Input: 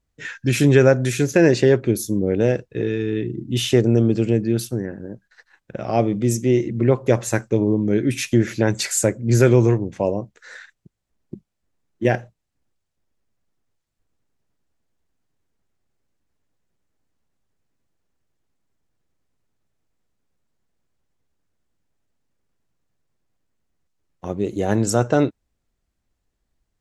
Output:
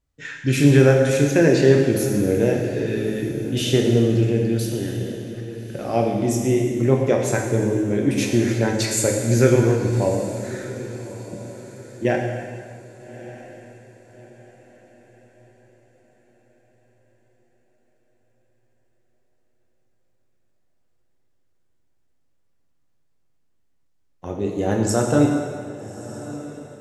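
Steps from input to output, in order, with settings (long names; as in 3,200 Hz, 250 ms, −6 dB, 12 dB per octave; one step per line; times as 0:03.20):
feedback delay with all-pass diffusion 1,223 ms, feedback 41%, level −15 dB
dense smooth reverb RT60 1.8 s, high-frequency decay 0.95×, DRR 0.5 dB
level −3 dB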